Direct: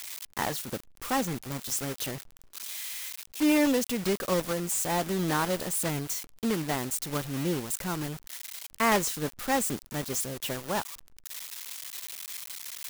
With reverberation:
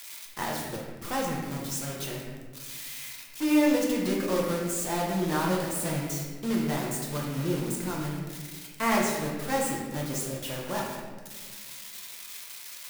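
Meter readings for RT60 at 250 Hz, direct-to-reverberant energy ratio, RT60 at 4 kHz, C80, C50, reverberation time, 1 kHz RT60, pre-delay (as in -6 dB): 2.2 s, -3.0 dB, 0.95 s, 3.5 dB, 1.5 dB, 1.5 s, 1.3 s, 6 ms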